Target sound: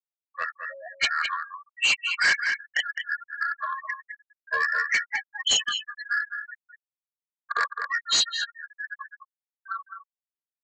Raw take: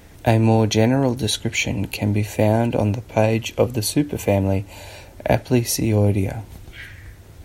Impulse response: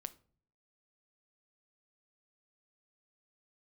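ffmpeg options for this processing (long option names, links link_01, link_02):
-filter_complex "[0:a]highpass=frequency=1400:width=0.5412,highpass=frequency=1400:width=1.3066,aemphasis=mode=reproduction:type=cd,afftfilt=real='re*gte(hypot(re,im),0.0562)':imag='im*gte(hypot(re,im),0.0562)':win_size=1024:overlap=0.75,highshelf=frequency=3200:gain=6,dynaudnorm=framelen=100:gausssize=11:maxgain=11dB,asetrate=30870,aresample=44100,asplit=2[link_01][link_02];[link_02]adelay=210,highpass=300,lowpass=3400,asoftclip=type=hard:threshold=-10.5dB,volume=-9dB[link_03];[link_01][link_03]amix=inputs=2:normalize=0,aresample=16000,asoftclip=type=tanh:threshold=-17dB,aresample=44100"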